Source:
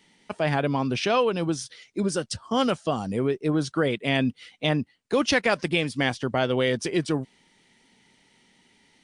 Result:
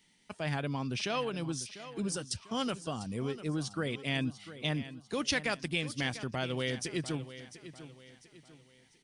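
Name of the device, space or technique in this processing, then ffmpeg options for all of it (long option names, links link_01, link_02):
smiley-face EQ: -af "lowshelf=frequency=170:gain=4,equalizer=frequency=530:width_type=o:width=2.4:gain=-5.5,highshelf=frequency=5500:gain=7,aecho=1:1:697|1394|2091|2788:0.2|0.0778|0.0303|0.0118,volume=-8dB"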